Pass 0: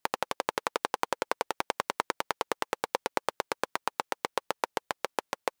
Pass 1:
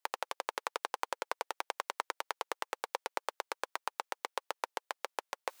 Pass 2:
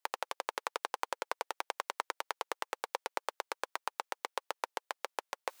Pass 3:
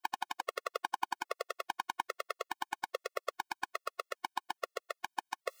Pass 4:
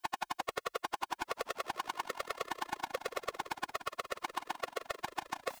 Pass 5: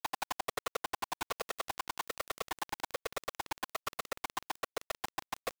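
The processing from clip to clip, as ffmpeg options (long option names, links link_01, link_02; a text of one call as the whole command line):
ffmpeg -i in.wav -af "areverse,acompressor=mode=upward:threshold=-37dB:ratio=2.5,areverse,highpass=500,volume=-5.5dB" out.wav
ffmpeg -i in.wav -af anull out.wav
ffmpeg -i in.wav -af "aeval=exprs='0.211*(cos(1*acos(clip(val(0)/0.211,-1,1)))-cos(1*PI/2))+0.0473*(cos(3*acos(clip(val(0)/0.211,-1,1)))-cos(3*PI/2))':channel_layout=same,asoftclip=type=tanh:threshold=-25.5dB,afftfilt=real='re*gt(sin(2*PI*1.2*pts/sr)*(1-2*mod(floor(b*sr/1024/360),2)),0)':imag='im*gt(sin(2*PI*1.2*pts/sr)*(1-2*mod(floor(b*sr/1024/360),2)),0)':win_size=1024:overlap=0.75,volume=12dB" out.wav
ffmpeg -i in.wav -filter_complex "[0:a]asplit=2[link_01][link_02];[link_02]acompressor=threshold=-42dB:ratio=6,volume=3dB[link_03];[link_01][link_03]amix=inputs=2:normalize=0,asoftclip=type=tanh:threshold=-31.5dB,asplit=6[link_04][link_05][link_06][link_07][link_08][link_09];[link_05]adelay=176,afreqshift=-42,volume=-12dB[link_10];[link_06]adelay=352,afreqshift=-84,volume=-18.2dB[link_11];[link_07]adelay=528,afreqshift=-126,volume=-24.4dB[link_12];[link_08]adelay=704,afreqshift=-168,volume=-30.6dB[link_13];[link_09]adelay=880,afreqshift=-210,volume=-36.8dB[link_14];[link_04][link_10][link_11][link_12][link_13][link_14]amix=inputs=6:normalize=0,volume=4dB" out.wav
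ffmpeg -i in.wav -af "acrusher=bits=5:mix=0:aa=0.000001" out.wav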